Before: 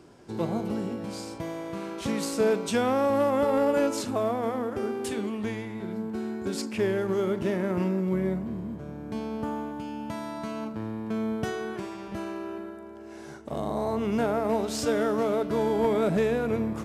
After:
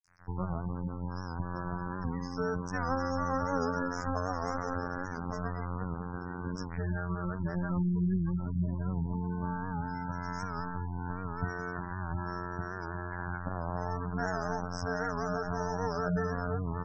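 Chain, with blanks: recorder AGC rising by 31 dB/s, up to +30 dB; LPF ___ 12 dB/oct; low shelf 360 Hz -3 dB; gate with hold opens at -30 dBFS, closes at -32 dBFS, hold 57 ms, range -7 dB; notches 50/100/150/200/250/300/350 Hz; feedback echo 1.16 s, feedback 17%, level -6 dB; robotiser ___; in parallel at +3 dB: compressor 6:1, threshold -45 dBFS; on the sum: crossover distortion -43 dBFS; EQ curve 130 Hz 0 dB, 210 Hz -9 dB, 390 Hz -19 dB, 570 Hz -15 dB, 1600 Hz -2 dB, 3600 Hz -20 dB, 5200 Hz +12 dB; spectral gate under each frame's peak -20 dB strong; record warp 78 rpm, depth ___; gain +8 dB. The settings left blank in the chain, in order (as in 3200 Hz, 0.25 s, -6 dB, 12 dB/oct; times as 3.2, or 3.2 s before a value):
1300 Hz, 88.5 Hz, 100 cents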